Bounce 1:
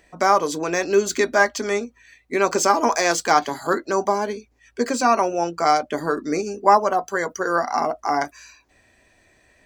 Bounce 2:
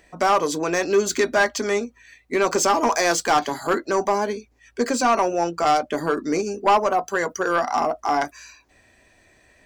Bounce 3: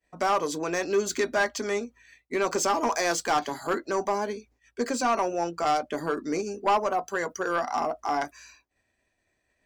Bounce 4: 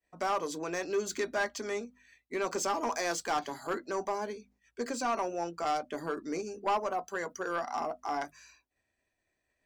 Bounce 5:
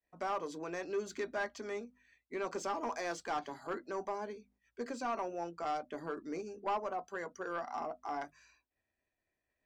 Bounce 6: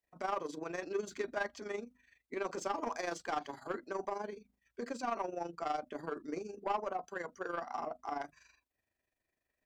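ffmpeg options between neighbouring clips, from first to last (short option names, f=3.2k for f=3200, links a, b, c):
-af "asoftclip=type=tanh:threshold=-12.5dB,volume=1.5dB"
-af "agate=range=-33dB:threshold=-47dB:ratio=3:detection=peak,volume=-6dB"
-af "bandreject=f=50:t=h:w=6,bandreject=f=100:t=h:w=6,bandreject=f=150:t=h:w=6,bandreject=f=200:t=h:w=6,bandreject=f=250:t=h:w=6,volume=-6.5dB"
-af "aemphasis=mode=reproduction:type=50kf,volume=-5dB"
-af "tremolo=f=24:d=0.667,volume=3dB"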